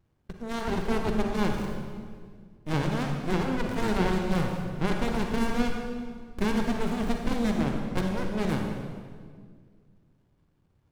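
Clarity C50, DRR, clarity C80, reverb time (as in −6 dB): 3.0 dB, 2.0 dB, 4.5 dB, 1.9 s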